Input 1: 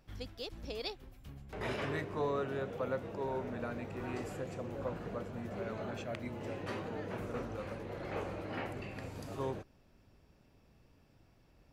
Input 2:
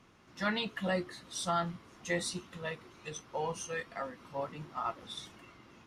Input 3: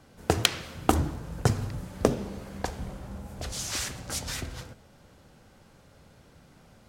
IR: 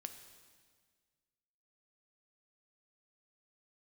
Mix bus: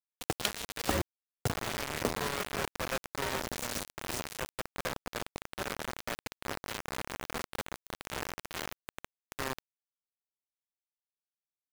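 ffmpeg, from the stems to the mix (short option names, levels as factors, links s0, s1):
-filter_complex "[0:a]volume=1.33[s0];[1:a]asplit=2[s1][s2];[s2]afreqshift=-1.2[s3];[s1][s3]amix=inputs=2:normalize=1,volume=0.944,afade=t=out:st=1.1:d=0.26:silence=0.316228[s4];[2:a]volume=0.316[s5];[s0][s4]amix=inputs=2:normalize=0,adynamicequalizer=threshold=0.00398:dfrequency=550:dqfactor=1.6:tfrequency=550:tqfactor=1.6:attack=5:release=100:ratio=0.375:range=2:mode=boostabove:tftype=bell,alimiter=level_in=1.58:limit=0.0631:level=0:latency=1:release=12,volume=0.631,volume=1[s6];[s5][s6]amix=inputs=2:normalize=0,acrusher=bits=4:mix=0:aa=0.000001"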